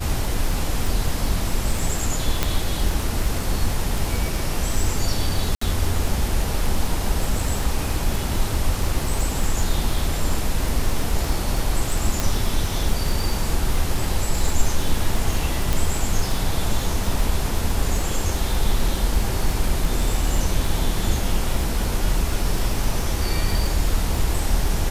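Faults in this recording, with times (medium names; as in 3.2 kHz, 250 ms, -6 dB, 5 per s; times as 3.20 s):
crackle 27 per s -23 dBFS
2.43 s: pop
5.55–5.61 s: dropout 64 ms
12.20 s: pop
15.73 s: pop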